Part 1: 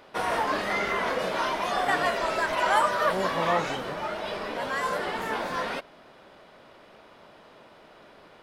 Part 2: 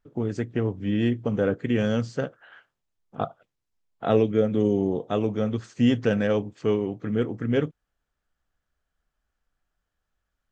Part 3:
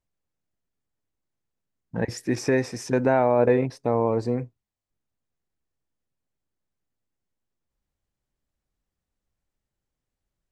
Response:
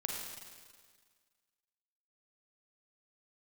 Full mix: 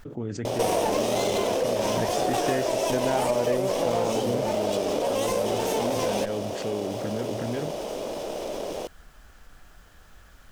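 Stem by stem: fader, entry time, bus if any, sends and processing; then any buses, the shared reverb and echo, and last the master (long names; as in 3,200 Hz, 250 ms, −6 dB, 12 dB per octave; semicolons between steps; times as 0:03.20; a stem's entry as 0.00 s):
+2.0 dB, 0.45 s, no send, lower of the sound and its delayed copy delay 0.33 ms; drawn EQ curve 110 Hz 0 dB, 560 Hz +14 dB, 1,900 Hz −4 dB, 6,600 Hz +13 dB; envelope flattener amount 50%; automatic ducking −7 dB, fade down 1.70 s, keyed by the second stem
−11.5 dB, 0.00 s, no send, envelope flattener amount 70%
+0.5 dB, 0.00 s, no send, no processing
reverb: not used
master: downward compressor 3 to 1, threshold −23 dBFS, peak gain reduction 9.5 dB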